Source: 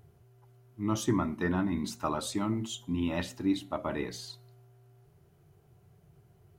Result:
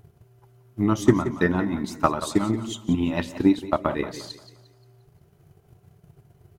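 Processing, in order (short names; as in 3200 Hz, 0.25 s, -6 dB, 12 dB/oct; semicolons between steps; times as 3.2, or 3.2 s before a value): transient shaper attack +10 dB, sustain -4 dB; outdoor echo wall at 31 m, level -15 dB; warbling echo 0.176 s, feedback 39%, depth 89 cents, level -15 dB; gain +4 dB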